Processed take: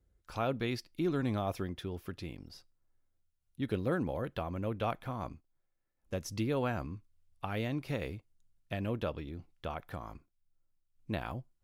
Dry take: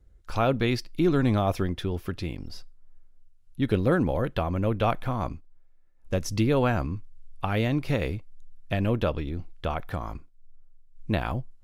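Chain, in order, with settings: high-pass 81 Hz 6 dB/octave; treble shelf 11 kHz +4.5 dB; trim -9 dB

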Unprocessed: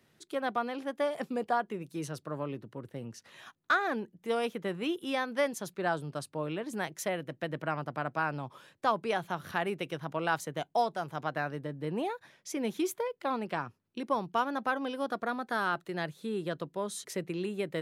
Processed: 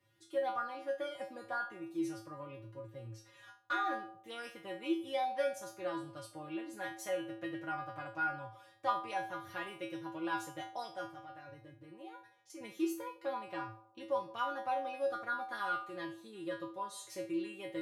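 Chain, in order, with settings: treble shelf 5 kHz -2.5 dB; 11.05–12.61 s: level held to a coarse grid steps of 14 dB; feedback comb 110 Hz, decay 0.35 s, harmonics odd, mix 100%; band-passed feedback delay 79 ms, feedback 58%, band-pass 630 Hz, level -14 dB; trim +7.5 dB

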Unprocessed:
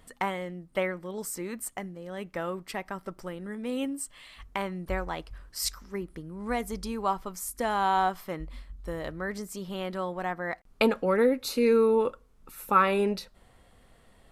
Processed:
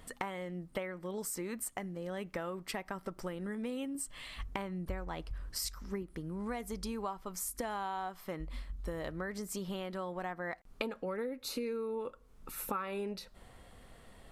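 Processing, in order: 3.95–6.03 s: bass shelf 280 Hz +6.5 dB; compression 8:1, threshold -38 dBFS, peak gain reduction 21 dB; trim +2.5 dB

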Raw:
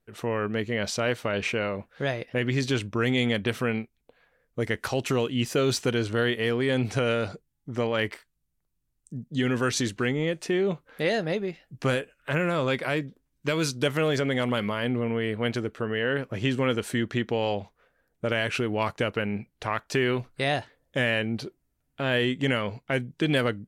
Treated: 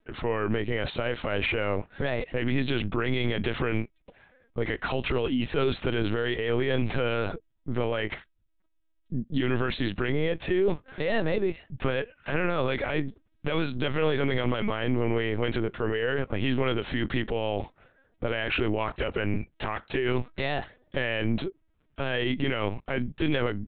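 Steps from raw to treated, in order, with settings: peak limiter -24 dBFS, peak gain reduction 11 dB; LPC vocoder at 8 kHz pitch kept; trim +6.5 dB

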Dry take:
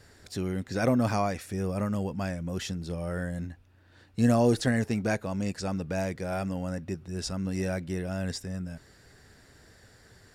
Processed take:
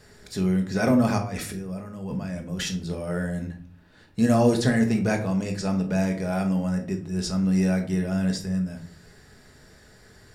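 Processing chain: 1.18–2.74 s: compressor with a negative ratio -38 dBFS, ratio -1; simulated room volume 410 m³, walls furnished, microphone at 1.4 m; trim +2 dB

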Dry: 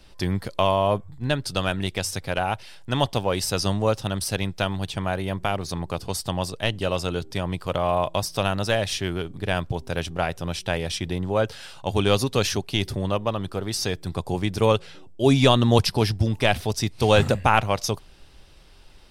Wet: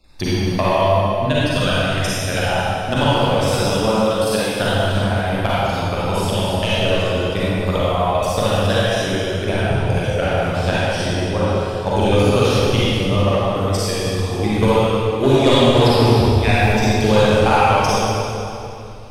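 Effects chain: random holes in the spectrogram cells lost 24%; 3.55–4.50 s: high-pass 180 Hz 24 dB/octave; transient shaper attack +12 dB, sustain -1 dB; saturation -3 dBFS, distortion -16 dB; reverberation RT60 2.8 s, pre-delay 36 ms, DRR -10 dB; trim -6.5 dB

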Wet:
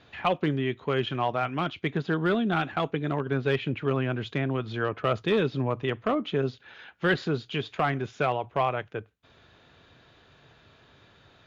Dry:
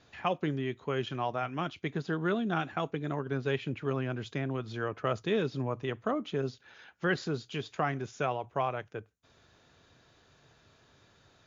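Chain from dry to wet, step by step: one-sided clip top -23 dBFS; resonant high shelf 4.5 kHz -8 dB, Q 1.5; trim +5.5 dB

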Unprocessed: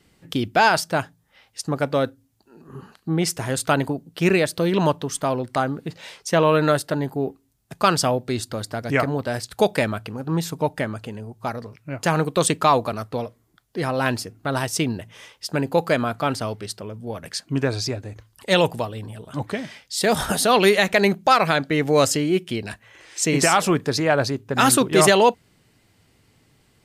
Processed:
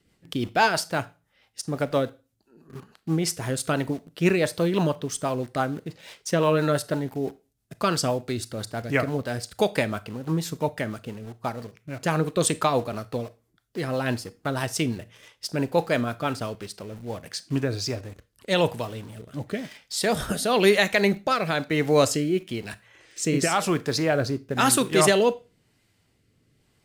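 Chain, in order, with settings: in parallel at -6 dB: bit crusher 6-bit; on the sum: rotary cabinet horn 6 Hz, later 1 Hz, at 17.08 s; reverberation RT60 0.30 s, pre-delay 23 ms, DRR 16.5 dB; trim -5 dB

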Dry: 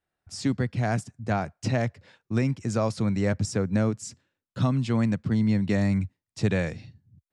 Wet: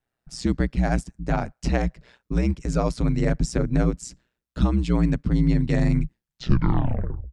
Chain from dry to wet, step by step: tape stop on the ending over 1.22 s; ring modulator 61 Hz; bass shelf 130 Hz +7 dB; trim +3.5 dB

